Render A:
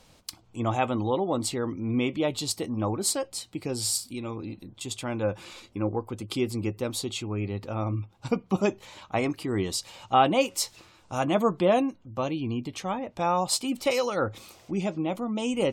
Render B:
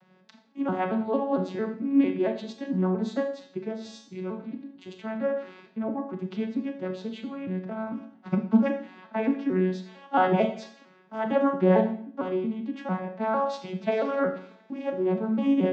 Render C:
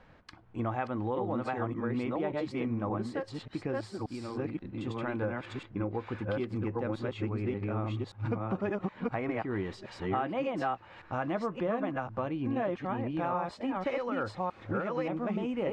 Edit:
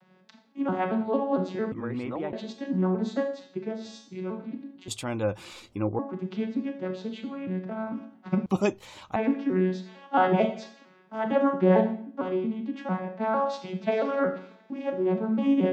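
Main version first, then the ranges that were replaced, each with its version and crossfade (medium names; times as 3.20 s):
B
1.72–2.33 s: from C
4.88–5.99 s: from A
8.46–9.16 s: from A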